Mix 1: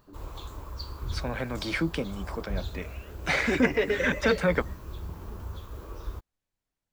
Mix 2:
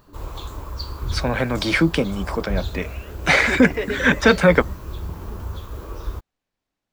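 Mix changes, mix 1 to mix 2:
first voice +10.5 dB; background +7.5 dB

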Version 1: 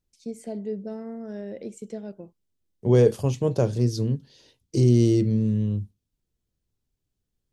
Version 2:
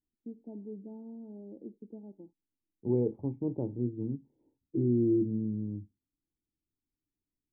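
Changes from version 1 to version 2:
first voice: add Chebyshev low-pass 1600 Hz, order 8; master: add vocal tract filter u

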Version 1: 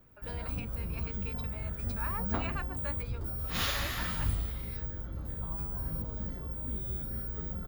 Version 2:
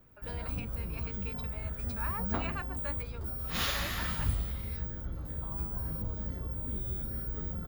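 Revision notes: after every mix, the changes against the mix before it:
second sound: entry +2.95 s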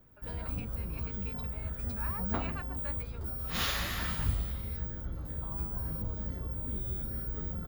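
speech -4.0 dB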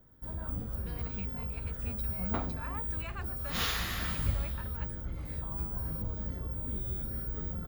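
speech: entry +0.60 s

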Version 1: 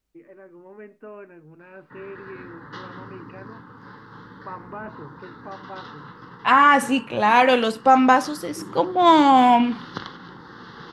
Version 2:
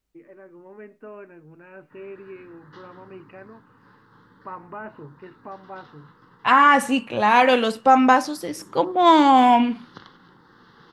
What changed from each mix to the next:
background -11.0 dB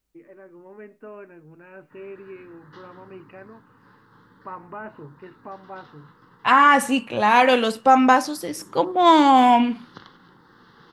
second voice: add high shelf 7300 Hz +5 dB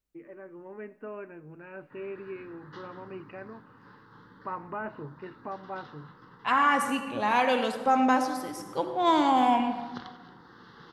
second voice -12.0 dB; reverb: on, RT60 1.4 s

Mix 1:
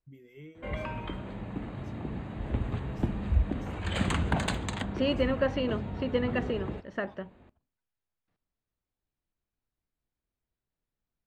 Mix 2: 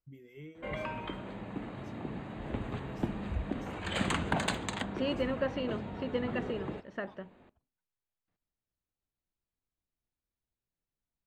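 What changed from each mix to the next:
second voice -5.0 dB; background: add bell 61 Hz -11.5 dB 2.2 oct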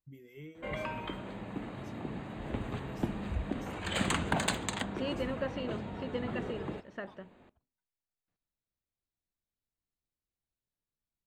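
second voice -3.5 dB; master: add high shelf 7000 Hz +8.5 dB

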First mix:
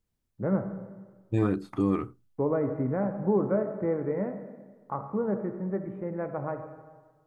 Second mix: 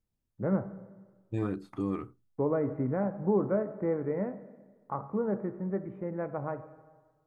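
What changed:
first voice: send -7.0 dB; second voice -6.5 dB

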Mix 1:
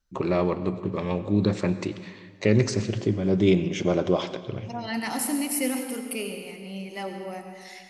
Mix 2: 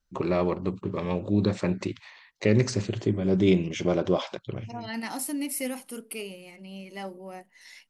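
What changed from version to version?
reverb: off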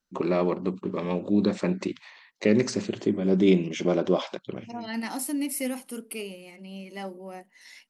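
master: add resonant low shelf 140 Hz -12.5 dB, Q 1.5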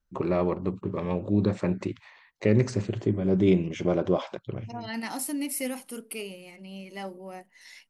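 first voice: add bell 4900 Hz -8 dB 2 oct; master: add resonant low shelf 140 Hz +12.5 dB, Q 1.5

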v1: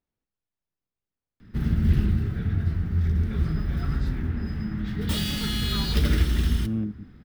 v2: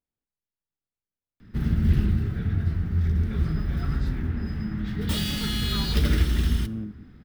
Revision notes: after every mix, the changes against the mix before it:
speech -5.5 dB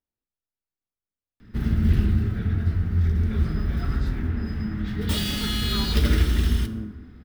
background: send +7.5 dB; master: add bell 150 Hz -8 dB 0.32 oct

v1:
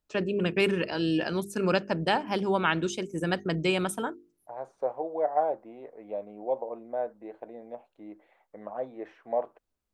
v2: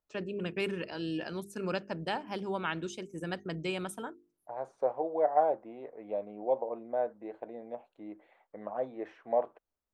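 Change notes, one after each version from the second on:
first voice -8.5 dB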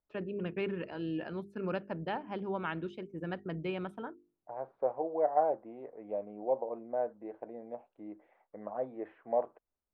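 second voice: add air absorption 120 m; master: add air absorption 440 m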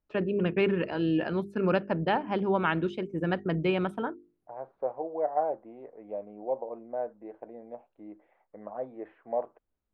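first voice +9.5 dB

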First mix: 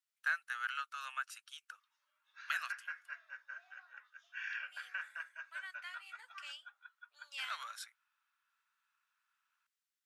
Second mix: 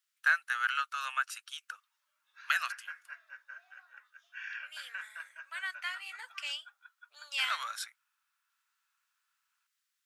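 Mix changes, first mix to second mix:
first voice +8.0 dB; second voice +11.0 dB

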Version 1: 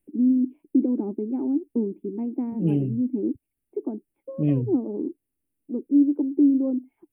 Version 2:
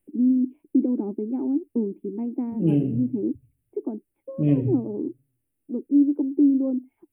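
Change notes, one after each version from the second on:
reverb: on, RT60 0.70 s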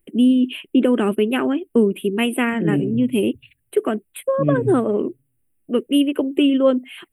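first voice: remove vocal tract filter u

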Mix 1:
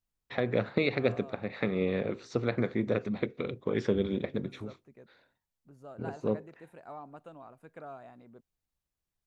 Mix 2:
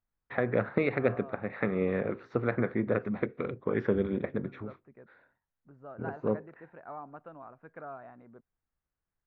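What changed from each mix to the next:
master: add synth low-pass 1600 Hz, resonance Q 1.7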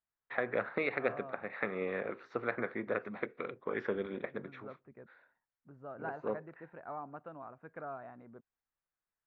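first voice: add HPF 830 Hz 6 dB/oct

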